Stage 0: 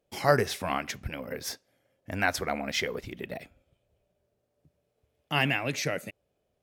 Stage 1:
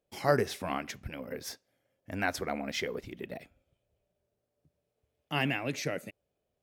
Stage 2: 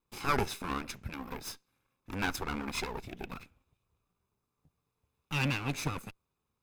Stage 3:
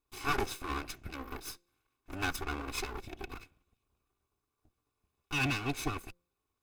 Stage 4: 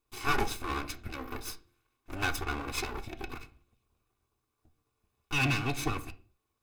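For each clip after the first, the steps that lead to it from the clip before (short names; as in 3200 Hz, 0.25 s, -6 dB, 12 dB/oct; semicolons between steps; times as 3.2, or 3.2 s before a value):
dynamic EQ 300 Hz, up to +5 dB, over -41 dBFS, Q 0.78; gain -5.5 dB
minimum comb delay 0.79 ms; gain +1 dB
minimum comb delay 2.7 ms; de-hum 174.2 Hz, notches 3
reverb, pre-delay 8 ms, DRR 8.5 dB; gain +2.5 dB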